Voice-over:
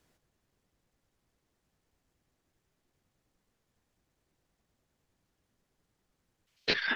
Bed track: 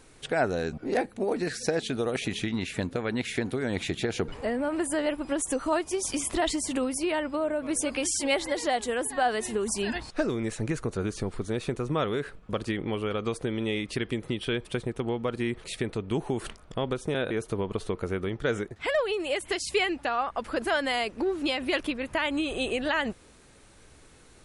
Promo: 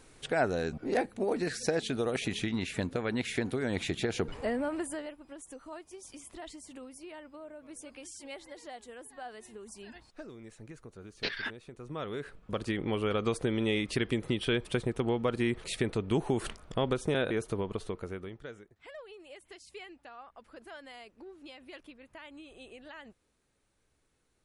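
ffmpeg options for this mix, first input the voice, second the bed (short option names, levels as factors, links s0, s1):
-filter_complex "[0:a]adelay=4550,volume=0.531[s0];[1:a]volume=6.31,afade=t=out:st=4.55:d=0.59:silence=0.158489,afade=t=in:st=11.72:d=1.39:silence=0.11885,afade=t=out:st=17.06:d=1.5:silence=0.0891251[s1];[s0][s1]amix=inputs=2:normalize=0"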